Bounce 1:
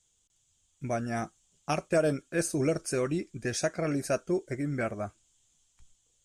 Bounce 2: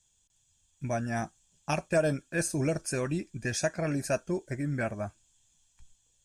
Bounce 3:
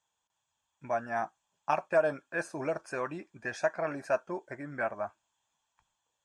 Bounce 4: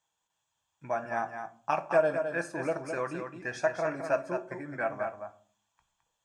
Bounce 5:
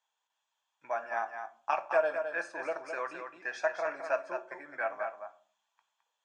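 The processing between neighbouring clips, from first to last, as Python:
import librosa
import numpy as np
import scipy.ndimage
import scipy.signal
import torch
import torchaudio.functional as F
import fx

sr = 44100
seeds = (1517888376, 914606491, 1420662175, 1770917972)

y1 = fx.notch(x, sr, hz=730.0, q=16.0)
y1 = y1 + 0.42 * np.pad(y1, (int(1.2 * sr / 1000.0), 0))[:len(y1)]
y2 = fx.bandpass_q(y1, sr, hz=1000.0, q=1.8)
y2 = F.gain(torch.from_numpy(y2), 7.0).numpy()
y3 = y2 + 10.0 ** (-7.0 / 20.0) * np.pad(y2, (int(213 * sr / 1000.0), 0))[:len(y2)]
y3 = fx.room_shoebox(y3, sr, seeds[0], volume_m3=390.0, walls='furnished', distance_m=0.64)
y4 = fx.bandpass_edges(y3, sr, low_hz=640.0, high_hz=5200.0)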